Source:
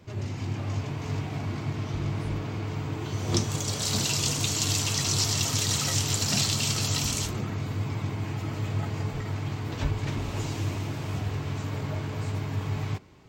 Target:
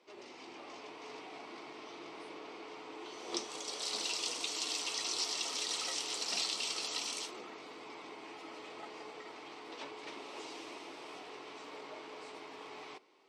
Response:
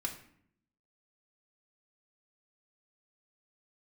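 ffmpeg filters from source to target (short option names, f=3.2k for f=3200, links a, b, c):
-af "highpass=f=370:w=0.5412,highpass=f=370:w=1.3066,equalizer=f=610:t=q:w=4:g=-4,equalizer=f=1.6k:t=q:w=4:g=-7,equalizer=f=7k:t=q:w=4:g=-10,lowpass=f=9.4k:w=0.5412,lowpass=f=9.4k:w=1.3066,volume=-6.5dB"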